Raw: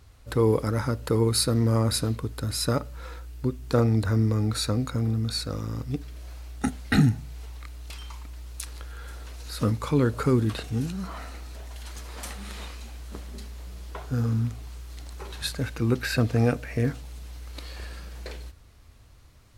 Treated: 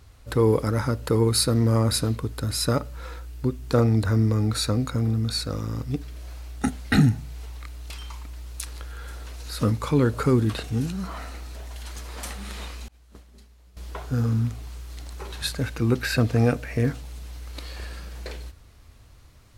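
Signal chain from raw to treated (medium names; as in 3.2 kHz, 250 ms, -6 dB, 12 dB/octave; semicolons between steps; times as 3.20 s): 12.88–13.77 s: expander -28 dBFS; in parallel at -10.5 dB: saturation -14.5 dBFS, distortion -19 dB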